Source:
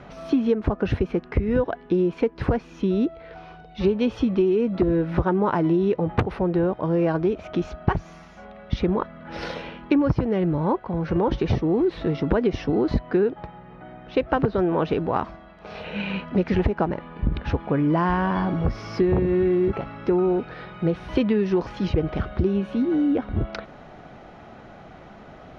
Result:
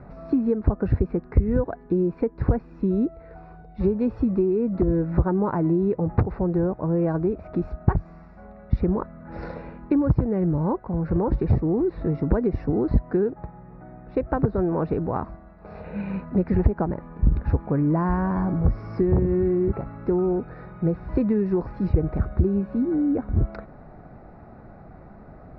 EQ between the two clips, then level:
moving average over 14 samples
low-shelf EQ 160 Hz +10 dB
−3.5 dB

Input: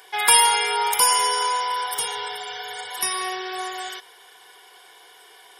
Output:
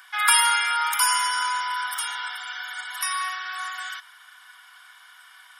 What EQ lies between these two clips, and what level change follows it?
four-pole ladder high-pass 1,200 Hz, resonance 70%
+7.5 dB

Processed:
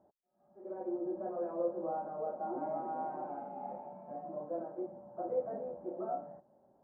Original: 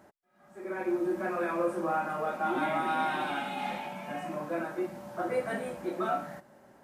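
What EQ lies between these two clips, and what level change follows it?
dynamic equaliser 500 Hz, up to +6 dB, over −44 dBFS, Q 1.4
transistor ladder low-pass 910 Hz, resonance 35%
−4.5 dB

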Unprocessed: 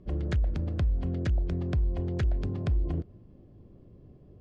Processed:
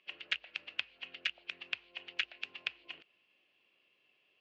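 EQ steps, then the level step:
high-pass with resonance 2,700 Hz, resonance Q 6.2
high-frequency loss of the air 97 metres
high-shelf EQ 4,200 Hz −9.5 dB
+8.5 dB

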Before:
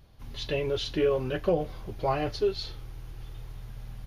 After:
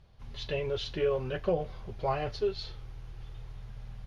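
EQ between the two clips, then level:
high-frequency loss of the air 60 metres
parametric band 290 Hz −11 dB 0.28 octaves
−2.5 dB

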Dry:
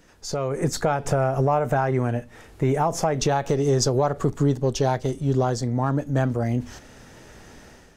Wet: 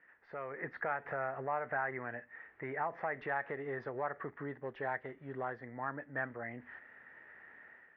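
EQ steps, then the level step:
high-pass filter 990 Hz 6 dB per octave
transistor ladder low-pass 2,000 Hz, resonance 75%
high-frequency loss of the air 310 metres
+2.0 dB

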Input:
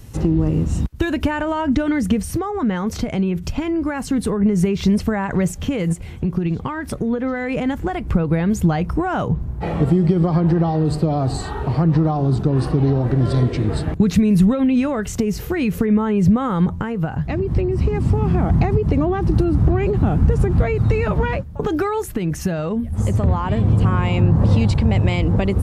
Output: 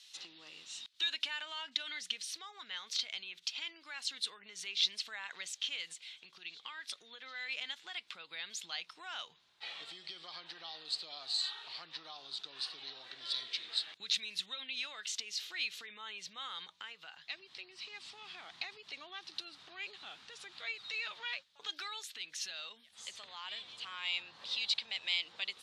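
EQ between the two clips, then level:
four-pole ladder band-pass 4,200 Hz, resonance 60%
high-shelf EQ 5,400 Hz −10 dB
+11.5 dB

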